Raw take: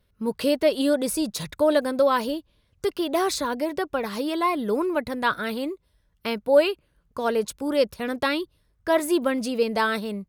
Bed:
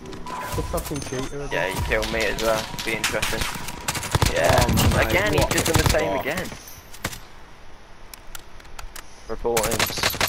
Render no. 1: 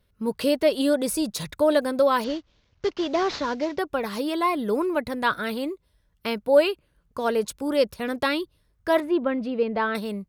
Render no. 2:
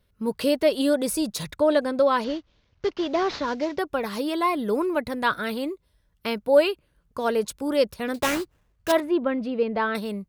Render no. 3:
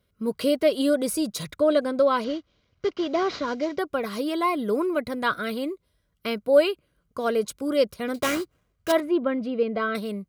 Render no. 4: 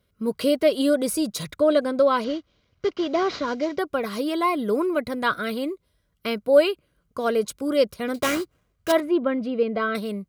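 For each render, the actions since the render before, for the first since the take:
0:02.24–0:03.79: variable-slope delta modulation 32 kbit/s; 0:09.00–0:09.95: high-frequency loss of the air 390 metres
0:01.56–0:03.48: high-frequency loss of the air 53 metres; 0:08.14–0:08.92: sample-rate reduction 4,500 Hz, jitter 20%
notch comb filter 880 Hz
level +1.5 dB

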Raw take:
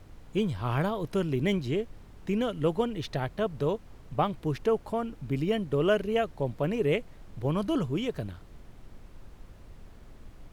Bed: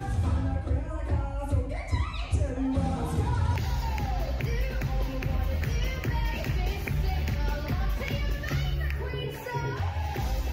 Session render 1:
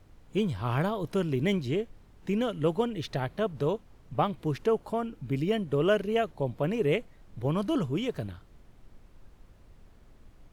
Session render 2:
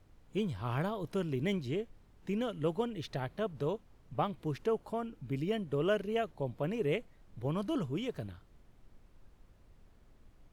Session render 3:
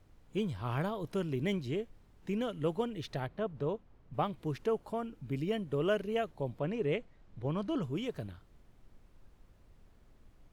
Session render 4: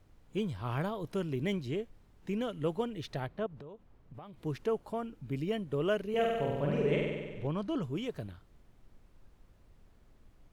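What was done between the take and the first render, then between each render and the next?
noise reduction from a noise print 6 dB
level −6 dB
0:03.27–0:04.14: low-pass filter 2,100 Hz 6 dB per octave; 0:06.59–0:07.83: high-frequency loss of the air 68 metres
0:03.46–0:04.41: downward compressor 12 to 1, threshold −44 dBFS; 0:06.09–0:07.47: flutter between parallel walls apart 8.2 metres, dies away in 1.4 s

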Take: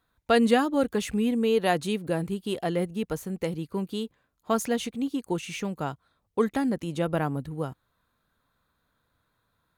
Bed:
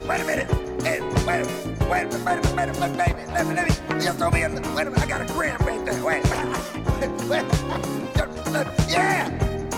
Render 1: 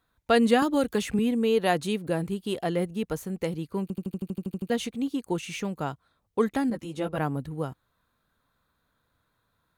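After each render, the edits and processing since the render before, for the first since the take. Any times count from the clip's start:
0:00.62–0:01.19: multiband upward and downward compressor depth 70%
0:03.82: stutter in place 0.08 s, 11 plays
0:06.70–0:07.18: string-ensemble chorus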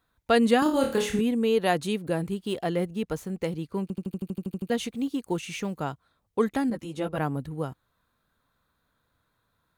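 0:00.63–0:01.21: flutter between parallel walls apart 4.5 metres, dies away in 0.4 s
0:02.35–0:04.08: running median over 3 samples
0:04.78–0:05.80: log-companded quantiser 8 bits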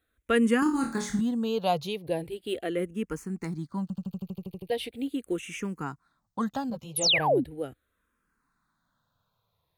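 0:06.96–0:07.44: sound drawn into the spectrogram fall 210–12,000 Hz −21 dBFS
frequency shifter mixed with the dry sound −0.39 Hz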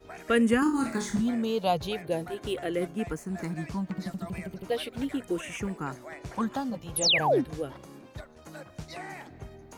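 mix in bed −20.5 dB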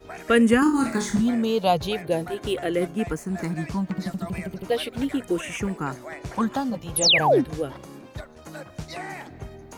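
level +5.5 dB

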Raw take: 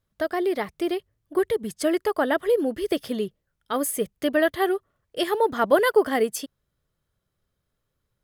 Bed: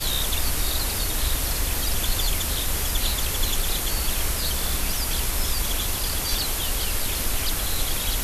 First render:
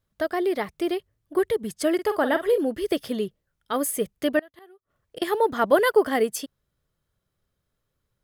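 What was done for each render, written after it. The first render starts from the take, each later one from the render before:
0:01.94–0:02.58: double-tracking delay 47 ms −10.5 dB
0:04.39–0:05.22: gate with flip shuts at −22 dBFS, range −28 dB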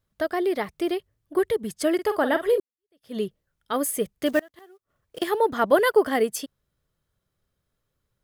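0:02.60–0:03.17: fade in exponential
0:04.26–0:05.30: one scale factor per block 5 bits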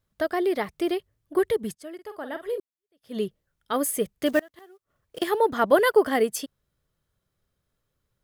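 0:01.75–0:03.23: fade in quadratic, from −17.5 dB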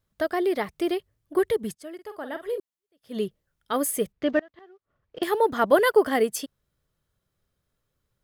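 0:04.12–0:05.23: high-frequency loss of the air 220 metres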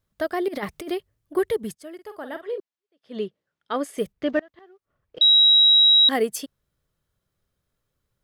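0:00.48–0:00.90: compressor whose output falls as the input rises −29 dBFS, ratio −0.5
0:02.41–0:03.98: band-pass filter 200–4,600 Hz
0:05.21–0:06.09: beep over 3,850 Hz −11.5 dBFS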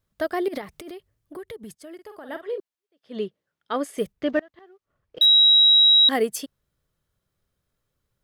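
0:00.61–0:02.29: downward compressor 5 to 1, threshold −36 dBFS
0:04.26–0:05.26: running median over 3 samples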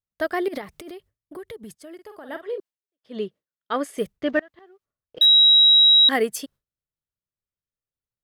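noise gate with hold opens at −51 dBFS
dynamic equaliser 1,800 Hz, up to +5 dB, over −36 dBFS, Q 1.1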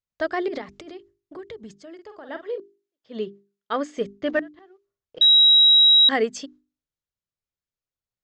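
Chebyshev low-pass filter 7,200 Hz, order 5
mains-hum notches 50/100/150/200/250/300/350/400 Hz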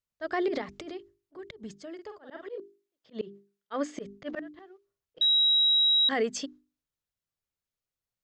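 volume swells 149 ms
brickwall limiter −19.5 dBFS, peak gain reduction 9 dB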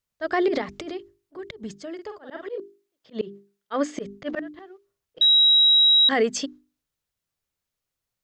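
level +6.5 dB

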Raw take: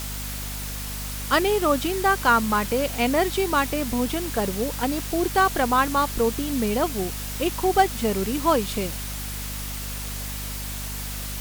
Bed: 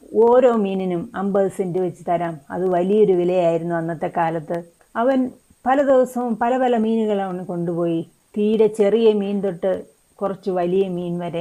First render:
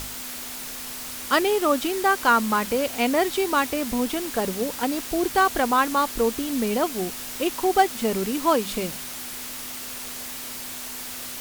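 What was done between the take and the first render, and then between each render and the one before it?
mains-hum notches 50/100/150/200 Hz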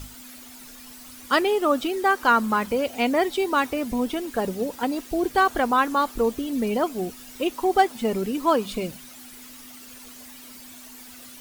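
broadband denoise 12 dB, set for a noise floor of −35 dBFS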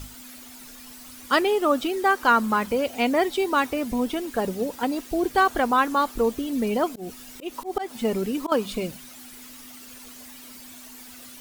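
0:06.87–0:08.52: volume swells 163 ms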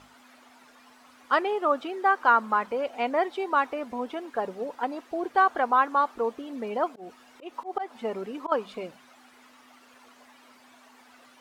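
resonant band-pass 960 Hz, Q 0.97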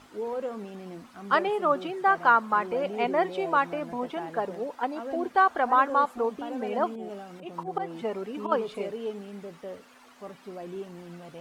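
mix in bed −19 dB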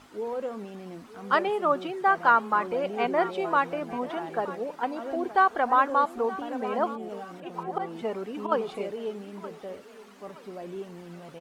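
repeating echo 922 ms, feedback 36%, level −16.5 dB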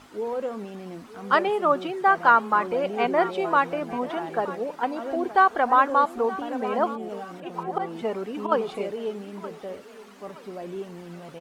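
level +3 dB

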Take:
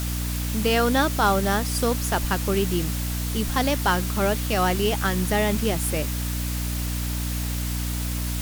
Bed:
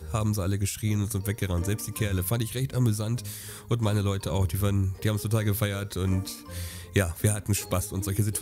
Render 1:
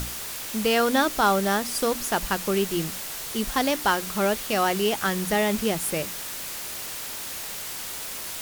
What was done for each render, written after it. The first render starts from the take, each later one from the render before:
mains-hum notches 60/120/180/240/300 Hz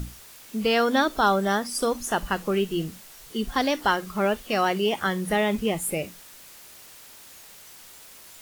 noise reduction from a noise print 13 dB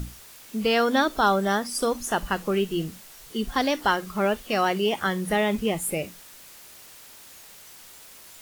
no processing that can be heard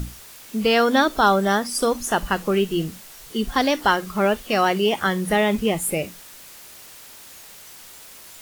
level +4 dB

